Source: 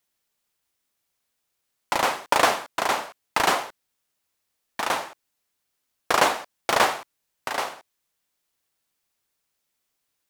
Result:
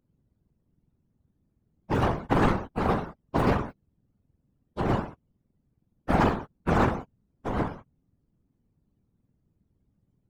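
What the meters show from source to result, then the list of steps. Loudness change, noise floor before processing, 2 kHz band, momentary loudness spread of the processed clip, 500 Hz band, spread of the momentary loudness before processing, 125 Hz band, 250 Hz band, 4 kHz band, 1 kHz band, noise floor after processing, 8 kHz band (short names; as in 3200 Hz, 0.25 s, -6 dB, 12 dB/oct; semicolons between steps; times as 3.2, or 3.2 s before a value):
-3.0 dB, -78 dBFS, -9.0 dB, 16 LU, -1.0 dB, 14 LU, +18.5 dB, +10.5 dB, -15.0 dB, -5.5 dB, -76 dBFS, under -20 dB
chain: spectrum mirrored in octaves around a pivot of 920 Hz; one-sided clip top -25 dBFS; whisperiser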